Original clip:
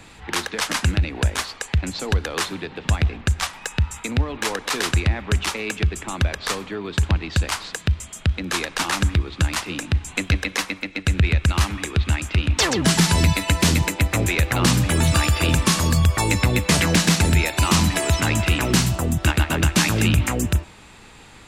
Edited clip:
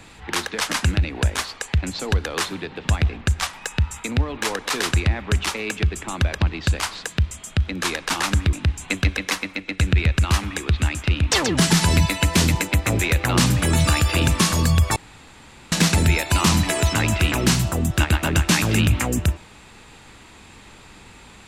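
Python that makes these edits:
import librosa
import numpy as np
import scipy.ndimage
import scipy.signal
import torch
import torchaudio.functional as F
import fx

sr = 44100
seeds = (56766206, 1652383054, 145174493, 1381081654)

y = fx.edit(x, sr, fx.cut(start_s=6.41, length_s=0.69),
    fx.cut(start_s=9.22, length_s=0.58),
    fx.room_tone_fill(start_s=16.23, length_s=0.76), tone=tone)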